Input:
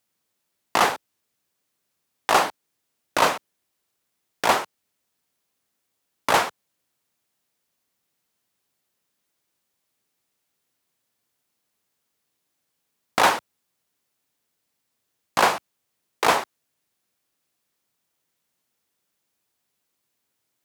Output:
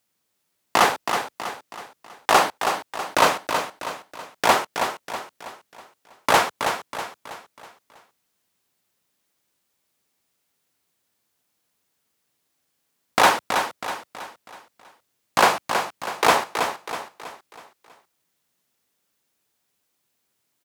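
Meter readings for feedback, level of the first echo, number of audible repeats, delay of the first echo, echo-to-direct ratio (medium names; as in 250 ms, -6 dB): 44%, -7.0 dB, 4, 323 ms, -6.0 dB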